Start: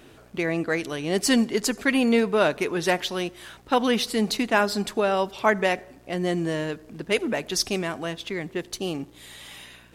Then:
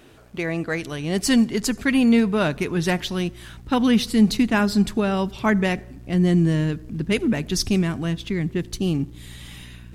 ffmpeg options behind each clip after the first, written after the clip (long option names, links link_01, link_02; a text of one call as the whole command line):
ffmpeg -i in.wav -af "asubboost=boost=8:cutoff=200" out.wav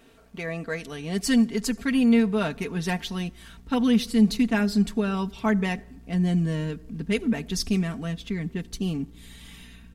ffmpeg -i in.wav -af "aecho=1:1:4.4:0.64,volume=-6.5dB" out.wav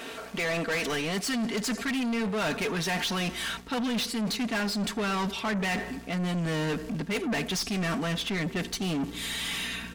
ffmpeg -i in.wav -filter_complex "[0:a]areverse,acompressor=threshold=-31dB:ratio=6,areverse,asplit=2[link_01][link_02];[link_02]highpass=frequency=720:poles=1,volume=27dB,asoftclip=type=tanh:threshold=-22dB[link_03];[link_01][link_03]amix=inputs=2:normalize=0,lowpass=frequency=6900:poles=1,volume=-6dB" out.wav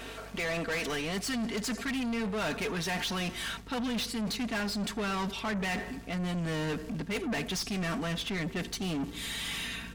ffmpeg -i in.wav -af "aeval=exprs='val(0)+0.00501*(sin(2*PI*50*n/s)+sin(2*PI*2*50*n/s)/2+sin(2*PI*3*50*n/s)/3+sin(2*PI*4*50*n/s)/4+sin(2*PI*5*50*n/s)/5)':channel_layout=same,volume=-3.5dB" out.wav